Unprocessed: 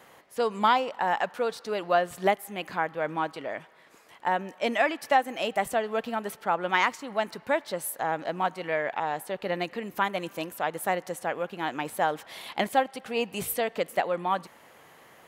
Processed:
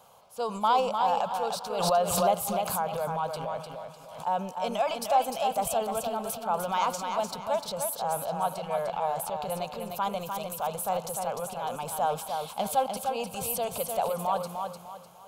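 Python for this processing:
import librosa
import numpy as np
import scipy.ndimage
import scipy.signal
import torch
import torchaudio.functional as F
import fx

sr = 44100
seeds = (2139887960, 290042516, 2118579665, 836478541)

y = fx.transient(x, sr, attack_db=-2, sustain_db=8)
y = fx.fixed_phaser(y, sr, hz=780.0, stages=4)
y = fx.echo_feedback(y, sr, ms=301, feedback_pct=33, wet_db=-5.5)
y = fx.pre_swell(y, sr, db_per_s=45.0, at=(1.7, 4.26))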